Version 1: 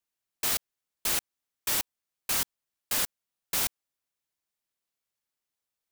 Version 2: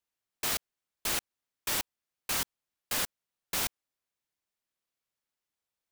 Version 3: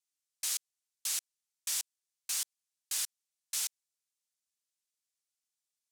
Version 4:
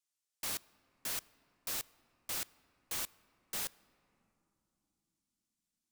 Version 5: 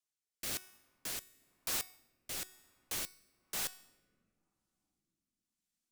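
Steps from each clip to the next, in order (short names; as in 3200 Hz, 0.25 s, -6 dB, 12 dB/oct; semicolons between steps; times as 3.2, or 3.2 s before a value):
high shelf 5500 Hz -5 dB
in parallel at -4 dB: wrapped overs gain 27 dB; on the sum: band-pass 7600 Hz, Q 1.1; gain +1 dB
wrapped overs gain 31 dB; on a send at -20.5 dB: reverb, pre-delay 3 ms; on the sum: gain -1 dB
resonator 370 Hz, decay 0.81 s, mix 70%; rotary speaker horn 1 Hz; in parallel at -7.5 dB: companded quantiser 4-bit; on the sum: gain +10 dB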